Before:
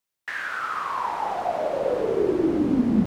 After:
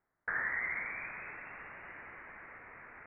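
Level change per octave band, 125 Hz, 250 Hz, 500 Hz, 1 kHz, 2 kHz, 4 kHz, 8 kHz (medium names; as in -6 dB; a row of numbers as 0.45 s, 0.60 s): -26.5 dB, -37.0 dB, -31.0 dB, -20.0 dB, -3.0 dB, under -30 dB, no reading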